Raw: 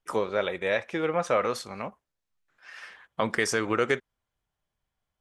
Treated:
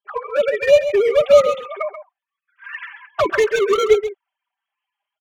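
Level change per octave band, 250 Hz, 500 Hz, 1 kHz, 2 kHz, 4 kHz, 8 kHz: +1.0 dB, +13.5 dB, +6.0 dB, +5.0 dB, +7.5 dB, +1.5 dB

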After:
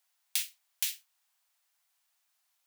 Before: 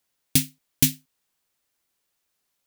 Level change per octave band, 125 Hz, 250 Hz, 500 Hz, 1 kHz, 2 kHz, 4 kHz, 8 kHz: under -40 dB, under -40 dB, under -25 dB, no reading, -7.0 dB, -7.5 dB, -10.0 dB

